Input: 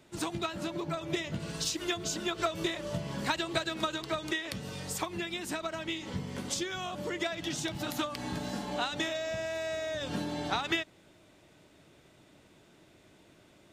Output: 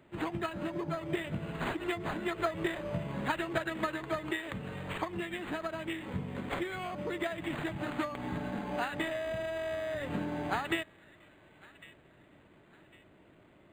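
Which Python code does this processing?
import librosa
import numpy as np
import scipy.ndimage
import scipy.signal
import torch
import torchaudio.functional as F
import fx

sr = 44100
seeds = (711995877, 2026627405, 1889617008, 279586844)

y = fx.echo_wet_highpass(x, sr, ms=1103, feedback_pct=38, hz=1900.0, wet_db=-17)
y = np.interp(np.arange(len(y)), np.arange(len(y))[::8], y[::8])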